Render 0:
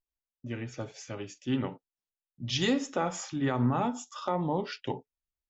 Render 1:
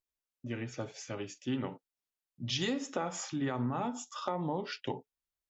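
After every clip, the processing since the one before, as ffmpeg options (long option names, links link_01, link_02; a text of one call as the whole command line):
ffmpeg -i in.wav -af "lowshelf=frequency=64:gain=-9,acompressor=threshold=-31dB:ratio=3" out.wav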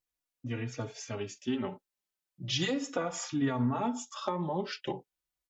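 ffmpeg -i in.wav -filter_complex "[0:a]asplit=2[link_01][link_02];[link_02]adelay=3.6,afreqshift=-0.37[link_03];[link_01][link_03]amix=inputs=2:normalize=1,volume=5dB" out.wav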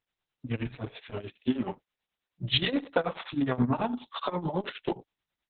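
ffmpeg -i in.wav -filter_complex "[0:a]tremolo=f=9.4:d=0.86,asplit=2[link_01][link_02];[link_02]asoftclip=type=tanh:threshold=-30dB,volume=-6.5dB[link_03];[link_01][link_03]amix=inputs=2:normalize=0,volume=5dB" -ar 48000 -c:a libopus -b:a 6k out.opus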